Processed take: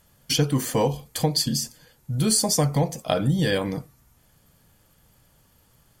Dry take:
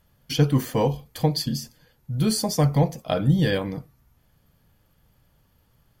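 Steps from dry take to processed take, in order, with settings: bell 8200 Hz +9.5 dB 0.94 oct; compressor 2:1, threshold -24 dBFS, peak gain reduction 6.5 dB; low shelf 150 Hz -5 dB; gain +4.5 dB

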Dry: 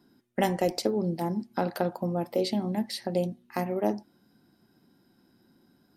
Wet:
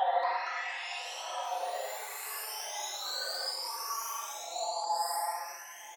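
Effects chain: spectral delay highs late, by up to 0.525 s; elliptic high-pass 710 Hz, stop band 80 dB; echo 0.187 s -6.5 dB; Paulstretch 8.1×, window 0.05 s, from 0.68; echoes that change speed 0.232 s, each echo +5 st, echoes 3, each echo -6 dB; gain +1 dB

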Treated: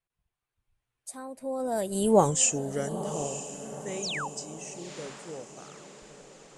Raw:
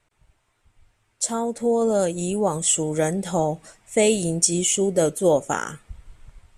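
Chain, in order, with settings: Doppler pass-by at 2.18, 41 m/s, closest 5.6 m; painted sound fall, 4.02–4.28, 730–7300 Hz -36 dBFS; diffused feedback echo 0.92 s, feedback 51%, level -12 dB; gain +2.5 dB

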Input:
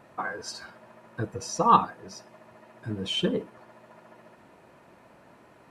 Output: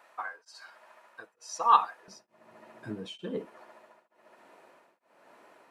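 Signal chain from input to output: HPF 840 Hz 12 dB/oct, from 2.08 s 180 Hz, from 3.45 s 390 Hz; beating tremolo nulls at 1.1 Hz

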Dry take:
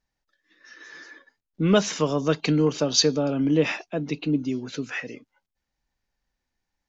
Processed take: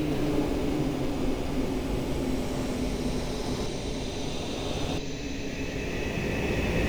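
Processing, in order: wind noise 600 Hz -25 dBFS; EQ curve 500 Hz 0 dB, 1400 Hz -13 dB, 2200 Hz +6 dB; in parallel at -3 dB: Schmitt trigger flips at -18.5 dBFS; on the sum: Paulstretch 12×, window 0.50 s, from 4.37; echoes that change speed 0.11 s, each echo +6 st, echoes 3, each echo -6 dB; gain -7 dB

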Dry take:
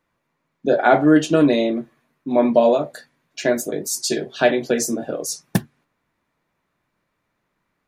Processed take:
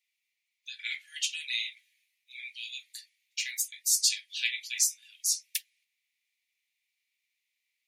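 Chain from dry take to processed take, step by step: steep high-pass 2100 Hz 72 dB/oct

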